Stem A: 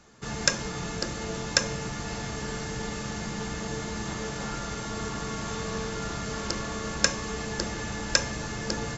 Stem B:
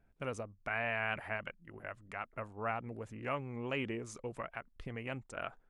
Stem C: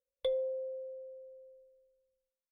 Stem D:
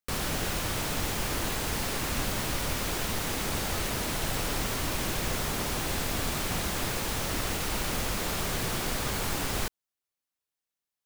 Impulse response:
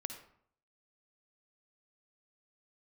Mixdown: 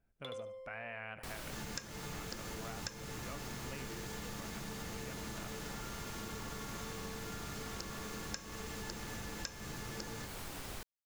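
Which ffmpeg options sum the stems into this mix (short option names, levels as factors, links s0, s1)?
-filter_complex "[0:a]equalizer=f=630:w=7.1:g=-11.5,adelay=1300,volume=0.422[s0];[1:a]volume=0.422,asplit=2[s1][s2];[s2]volume=0.211[s3];[2:a]aeval=exprs='if(lt(val(0),0),0.708*val(0),val(0))':c=same,highpass=f=710:w=0.5412,highpass=f=710:w=1.3066,volume=0.891,asplit=2[s4][s5];[s5]volume=0.668[s6];[3:a]adelay=1150,volume=0.224[s7];[s3][s6]amix=inputs=2:normalize=0,aecho=0:1:73|146|219|292:1|0.26|0.0676|0.0176[s8];[s0][s1][s4][s7][s8]amix=inputs=5:normalize=0,acompressor=threshold=0.01:ratio=6"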